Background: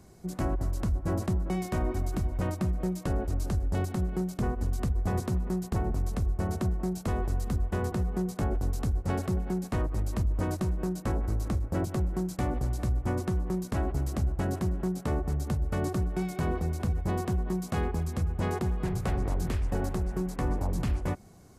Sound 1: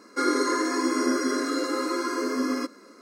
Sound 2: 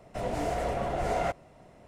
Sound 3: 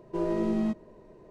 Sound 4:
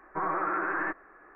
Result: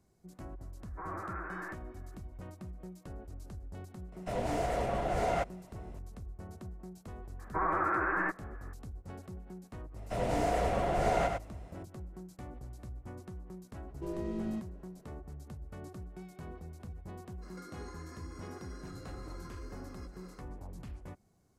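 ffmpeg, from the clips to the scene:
ffmpeg -i bed.wav -i cue0.wav -i cue1.wav -i cue2.wav -i cue3.wav -filter_complex "[4:a]asplit=2[link_01][link_02];[2:a]asplit=2[link_03][link_04];[0:a]volume=-16.5dB[link_05];[link_04]aecho=1:1:101:0.562[link_06];[3:a]equalizer=frequency=870:width_type=o:width=1.8:gain=-3.5[link_07];[1:a]acompressor=threshold=-44dB:ratio=6:attack=3.2:release=140:knee=1:detection=peak[link_08];[link_01]atrim=end=1.35,asetpts=PTS-STARTPTS,volume=-12dB,afade=type=in:duration=0.004:curve=hsin,afade=type=out:start_time=1.346:duration=0.004:curve=hsin,adelay=820[link_09];[link_03]atrim=end=1.87,asetpts=PTS-STARTPTS,volume=-2dB,afade=type=in:duration=0.004:curve=hsin,afade=type=out:start_time=1.866:duration=0.004:curve=hsin,adelay=4120[link_10];[link_02]atrim=end=1.35,asetpts=PTS-STARTPTS,volume=-1dB,afade=type=in:duration=0.004:curve=hsin,afade=type=out:start_time=1.346:duration=0.004:curve=hsin,adelay=7390[link_11];[link_06]atrim=end=1.87,asetpts=PTS-STARTPTS,volume=-1dB,afade=type=in:duration=0.004:curve=hsin,afade=type=out:start_time=1.866:duration=0.004:curve=hsin,adelay=9960[link_12];[link_07]atrim=end=1.3,asetpts=PTS-STARTPTS,volume=-8.5dB,afade=type=in:duration=0.004:curve=hsin,afade=type=out:start_time=1.296:duration=0.004:curve=hsin,adelay=13880[link_13];[link_08]atrim=end=3.01,asetpts=PTS-STARTPTS,volume=-5.5dB,afade=type=in:duration=0.02,afade=type=out:start_time=2.99:duration=0.02,adelay=17410[link_14];[link_05][link_09][link_10][link_11][link_12][link_13][link_14]amix=inputs=7:normalize=0" out.wav

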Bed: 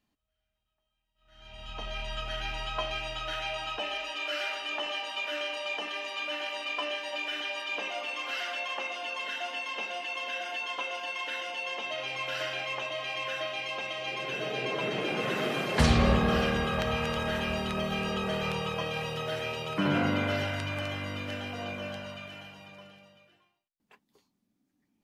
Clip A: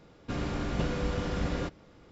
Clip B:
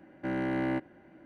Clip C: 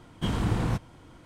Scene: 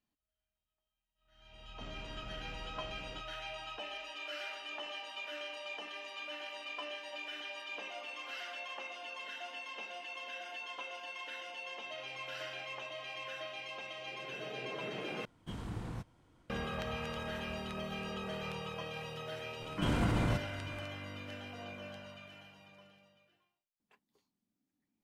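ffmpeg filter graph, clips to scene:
ffmpeg -i bed.wav -i cue0.wav -i cue1.wav -i cue2.wav -filter_complex "[3:a]asplit=2[link_01][link_02];[0:a]volume=-9.5dB[link_03];[1:a]acompressor=threshold=-33dB:ratio=6:attack=3.2:release=140:knee=1:detection=peak[link_04];[link_02]alimiter=limit=-24dB:level=0:latency=1:release=54[link_05];[link_03]asplit=2[link_06][link_07];[link_06]atrim=end=15.254[link_08];[link_01]atrim=end=1.25,asetpts=PTS-STARTPTS,volume=-15dB[link_09];[link_07]atrim=start=16.496[link_10];[link_04]atrim=end=2.11,asetpts=PTS-STARTPTS,volume=-13.5dB,afade=type=in:duration=0.004:curve=hsin,afade=type=out:start_time=2.106:duration=0.004:curve=hsin,adelay=1520[link_11];[link_05]atrim=end=1.25,asetpts=PTS-STARTPTS,afade=type=in:duration=0.004:curve=hsin,afade=type=out:start_time=1.246:duration=0.004:curve=hsin,adelay=19600[link_12];[link_08][link_09]acrossfade=duration=0.004:curve1=hsin:curve2=hsin[link_13];[link_13][link_10]acrossfade=duration=0.004:curve1=hsin:curve2=hsin[link_14];[link_14][link_11][link_12]amix=inputs=3:normalize=0" out.wav

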